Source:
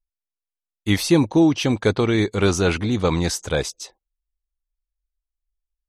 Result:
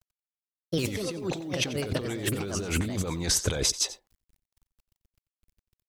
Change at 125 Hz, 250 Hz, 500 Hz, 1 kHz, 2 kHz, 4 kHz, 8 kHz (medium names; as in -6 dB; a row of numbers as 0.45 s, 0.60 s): -9.0 dB, -13.0 dB, -11.0 dB, -12.0 dB, -8.0 dB, -3.0 dB, +1.5 dB